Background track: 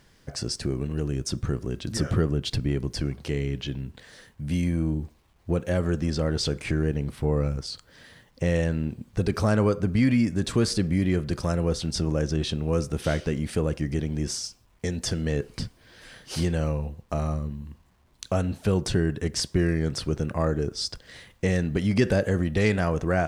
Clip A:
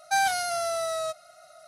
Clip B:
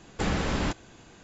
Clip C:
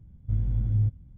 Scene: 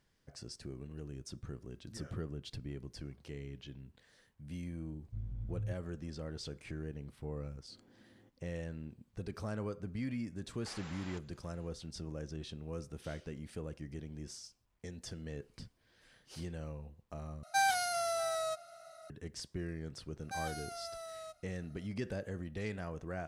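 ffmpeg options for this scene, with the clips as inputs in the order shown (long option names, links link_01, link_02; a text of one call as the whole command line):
ffmpeg -i bed.wav -i cue0.wav -i cue1.wav -i cue2.wav -filter_complex "[3:a]asplit=2[link_01][link_02];[1:a]asplit=2[link_03][link_04];[0:a]volume=-17.5dB[link_05];[link_02]highpass=frequency=290:width=0.5412,highpass=frequency=290:width=1.3066[link_06];[2:a]highpass=720[link_07];[link_03]asplit=2[link_08][link_09];[link_09]adelay=641.4,volume=-21dB,highshelf=frequency=4000:gain=-14.4[link_10];[link_08][link_10]amix=inputs=2:normalize=0[link_11];[link_05]asplit=2[link_12][link_13];[link_12]atrim=end=17.434[link_14];[link_11]atrim=end=1.67,asetpts=PTS-STARTPTS,volume=-6dB[link_15];[link_13]atrim=start=19.096[link_16];[link_01]atrim=end=1.17,asetpts=PTS-STARTPTS,volume=-15.5dB,afade=type=in:duration=0.004:curve=hsin,afade=type=out:start_time=1.166:duration=0.004:curve=hsin,adelay=4840[link_17];[link_06]atrim=end=1.17,asetpts=PTS-STARTPTS,volume=-12.5dB,afade=type=in:duration=0.004:curve=hsin,afade=type=out:start_time=1.166:duration=0.004:curve=hsin,adelay=7400[link_18];[link_07]atrim=end=1.23,asetpts=PTS-STARTPTS,volume=-17dB,afade=type=in:duration=0.004:curve=hsin,afade=type=out:start_time=1.226:duration=0.004:curve=hsin,adelay=10460[link_19];[link_04]atrim=end=1.67,asetpts=PTS-STARTPTS,volume=-17dB,afade=type=in:duration=0.004:curve=hsin,afade=type=out:start_time=1.666:duration=0.004:curve=hsin,adelay=890820S[link_20];[link_14][link_15]acrossfade=duration=0.004:curve1=hsin:curve2=hsin[link_21];[link_21][link_16]acrossfade=duration=0.004:curve1=hsin:curve2=hsin[link_22];[link_22][link_17][link_18][link_19][link_20]amix=inputs=5:normalize=0" out.wav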